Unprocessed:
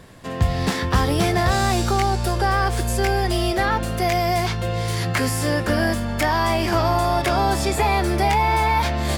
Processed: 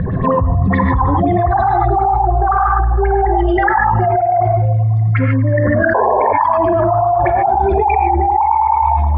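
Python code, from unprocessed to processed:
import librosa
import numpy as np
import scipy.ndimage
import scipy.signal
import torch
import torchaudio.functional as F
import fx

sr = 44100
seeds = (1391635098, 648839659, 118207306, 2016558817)

y = fx.spec_expand(x, sr, power=3.0)
y = scipy.signal.sosfilt(scipy.signal.butter(2, 5500.0, 'lowpass', fs=sr, output='sos'), y)
y = fx.echo_feedback(y, sr, ms=238, feedback_pct=49, wet_db=-21.5)
y = fx.tremolo_random(y, sr, seeds[0], hz=3.5, depth_pct=55)
y = fx.filter_lfo_lowpass(y, sr, shape='sine', hz=9.5, low_hz=750.0, high_hz=3800.0, q=7.3)
y = fx.rev_gated(y, sr, seeds[1], gate_ms=170, shape='rising', drr_db=1.0)
y = fx.spec_paint(y, sr, seeds[2], shape='noise', start_s=5.94, length_s=0.39, low_hz=370.0, high_hz=1100.0, level_db=-9.0)
y = fx.env_flatten(y, sr, amount_pct=100)
y = y * 10.0 ** (-7.0 / 20.0)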